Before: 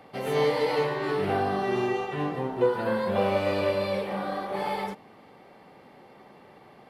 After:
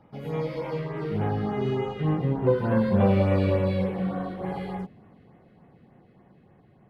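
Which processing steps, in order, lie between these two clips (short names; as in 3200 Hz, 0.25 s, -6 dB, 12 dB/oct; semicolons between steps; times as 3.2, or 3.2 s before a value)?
Doppler pass-by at 2.97, 24 m/s, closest 27 m; LFO notch sine 3.4 Hz 830–4800 Hz; tone controls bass +15 dB, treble -9 dB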